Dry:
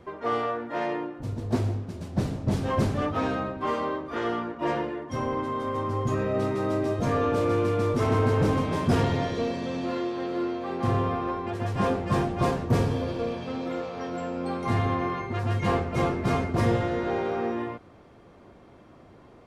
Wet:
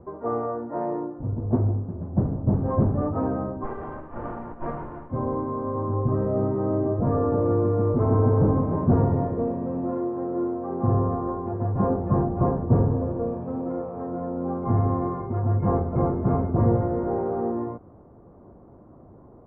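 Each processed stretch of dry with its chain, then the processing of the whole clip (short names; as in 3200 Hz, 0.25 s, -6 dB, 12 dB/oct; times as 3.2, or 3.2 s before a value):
3.63–5.1 spectral whitening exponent 0.1 + running maximum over 9 samples
whole clip: LPF 1100 Hz 24 dB/oct; low shelf 340 Hz +5 dB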